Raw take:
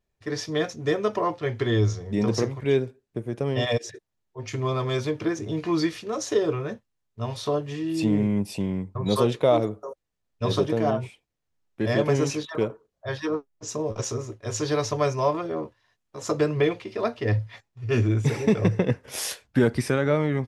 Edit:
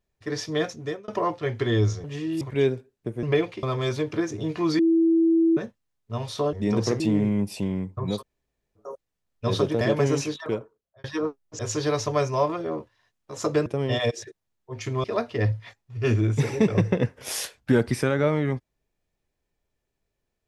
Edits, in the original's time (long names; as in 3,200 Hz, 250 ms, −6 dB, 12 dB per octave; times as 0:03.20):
0:00.69–0:01.08: fade out
0:02.04–0:02.51: swap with 0:07.61–0:07.98
0:03.33–0:04.71: swap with 0:16.51–0:16.91
0:05.87–0:06.65: beep over 329 Hz −16 dBFS
0:09.13–0:09.81: fill with room tone, crossfade 0.16 s
0:10.79–0:11.90: remove
0:12.44–0:13.13: fade out
0:13.68–0:14.44: remove